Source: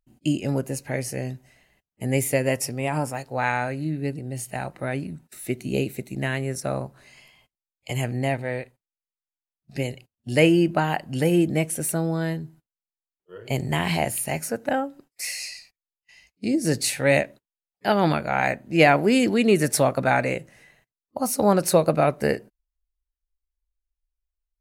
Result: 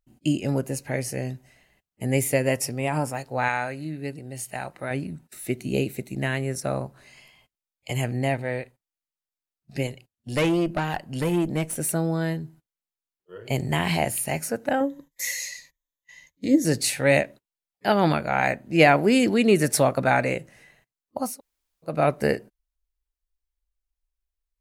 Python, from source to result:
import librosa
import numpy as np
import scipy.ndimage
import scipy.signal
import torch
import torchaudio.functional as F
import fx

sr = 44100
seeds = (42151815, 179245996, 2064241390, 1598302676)

y = fx.low_shelf(x, sr, hz=440.0, db=-7.0, at=(3.48, 4.91))
y = fx.tube_stage(y, sr, drive_db=17.0, bias=0.55, at=(9.87, 11.78))
y = fx.ripple_eq(y, sr, per_octave=1.1, db=14, at=(14.8, 16.65))
y = fx.edit(y, sr, fx.room_tone_fill(start_s=21.29, length_s=0.65, crossfade_s=0.24), tone=tone)